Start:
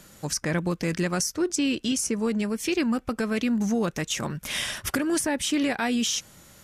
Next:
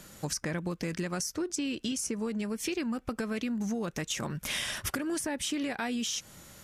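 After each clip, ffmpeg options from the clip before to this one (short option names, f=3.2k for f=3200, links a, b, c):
-af "acompressor=threshold=-30dB:ratio=6"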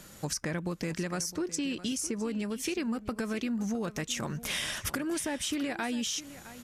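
-af "aecho=1:1:661:0.168"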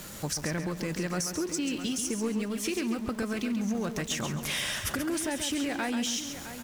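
-af "aeval=exprs='val(0)+0.5*0.00891*sgn(val(0))':c=same,aecho=1:1:136|272|408:0.398|0.115|0.0335"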